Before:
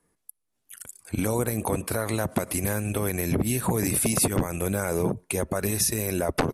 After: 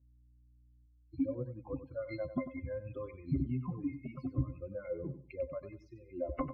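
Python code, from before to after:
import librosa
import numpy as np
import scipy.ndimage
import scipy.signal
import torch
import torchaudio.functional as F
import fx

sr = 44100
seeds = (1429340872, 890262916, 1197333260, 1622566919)

p1 = fx.bin_expand(x, sr, power=3.0)
p2 = fx.rider(p1, sr, range_db=10, speed_s=0.5)
p3 = p1 + (p2 * 10.0 ** (1.0 / 20.0))
p4 = fx.spec_topn(p3, sr, count=64)
p5 = scipy.signal.sosfilt(scipy.signal.butter(4, 3700.0, 'lowpass', fs=sr, output='sos'), p4)
p6 = p5 + fx.echo_feedback(p5, sr, ms=95, feedback_pct=23, wet_db=-12.0, dry=0)
p7 = fx.add_hum(p6, sr, base_hz=60, snr_db=31)
p8 = fx.octave_resonator(p7, sr, note='C', decay_s=0.11)
p9 = fx.env_phaser(p8, sr, low_hz=170.0, high_hz=1300.0, full_db=-28.5, at=(0.85, 1.27), fade=0.02)
y = p9 * 10.0 ** (-1.5 / 20.0)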